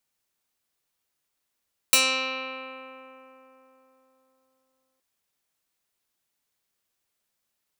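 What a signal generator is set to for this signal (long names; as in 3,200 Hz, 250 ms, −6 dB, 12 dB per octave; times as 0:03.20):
Karplus-Strong string C4, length 3.07 s, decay 3.89 s, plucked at 0.16, medium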